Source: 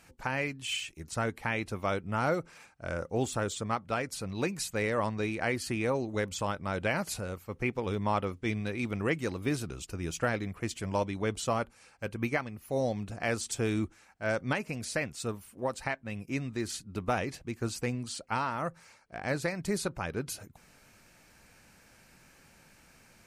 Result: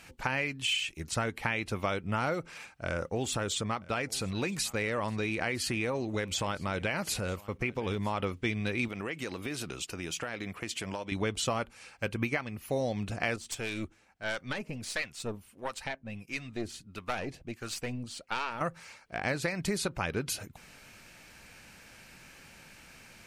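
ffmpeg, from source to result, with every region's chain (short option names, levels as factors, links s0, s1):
-filter_complex "[0:a]asettb=1/sr,asplit=3[s0][s1][s2];[s0]atrim=end=2.854[s3];[s1]atrim=start=2.85:end=8.2,asetpts=PTS-STARTPTS,afade=t=in:d=0.004:c=qsin,afade=t=out:st=5.346:d=0.004:c=qsin,agate=range=0.316:threshold=0.00316:ratio=16:release=100:detection=peak,acompressor=threshold=0.0224:ratio=2:attack=3.2:release=140:knee=1:detection=peak,aecho=1:1:957:0.0708,atrim=end_sample=235935[s4];[s2]atrim=start=8.196[s5];[s3][s4]acrossfade=d=0.004:c1=hsin:c2=qsin[s6];[s6][s5]acrossfade=d=0.004:c1=qsin:c2=hsin,asettb=1/sr,asplit=3[s7][s8][s9];[s7]atrim=end=8.884[s10];[s8]atrim=start=8.88:end=11.12,asetpts=PTS-STARTPTS,afade=t=in:d=0.004:c=qsin,afade=t=out:st=2.236:d=0.004:c=qsin,highpass=f=250:p=1,acompressor=threshold=0.0141:ratio=8:attack=3.2:release=140:knee=1:detection=peak[s11];[s9]atrim=start=11.116[s12];[s10][s11]acrossfade=d=0.004:c1=hsin:c2=qsin[s13];[s13][s12]acrossfade=d=0.004:c1=qsin:c2=hsin,asettb=1/sr,asplit=3[s14][s15][s16];[s14]atrim=end=13.364[s17];[s15]atrim=start=13.36:end=18.61,asetpts=PTS-STARTPTS,afade=t=in:d=0.004:c=qsin,afade=t=out:st=5.246:d=0.004:c=qsin,acrossover=split=750[s18][s19];[s18]aeval=exprs='val(0)*(1-0.7/2+0.7/2*cos(2*PI*1.5*n/s))':c=same[s20];[s19]aeval=exprs='val(0)*(1-0.7/2-0.7/2*cos(2*PI*1.5*n/s))':c=same[s21];[s20][s21]amix=inputs=2:normalize=0,aeval=exprs='(tanh(25.1*val(0)+0.7)-tanh(0.7))/25.1':c=same[s22];[s16]atrim=start=18.606[s23];[s17][s22]acrossfade=d=0.004:c1=hsin:c2=qsin[s24];[s24][s23]acrossfade=d=0.004:c1=qsin:c2=hsin,equalizer=f=2900:w=1:g=6,acompressor=threshold=0.0282:ratio=6,volume=1.58"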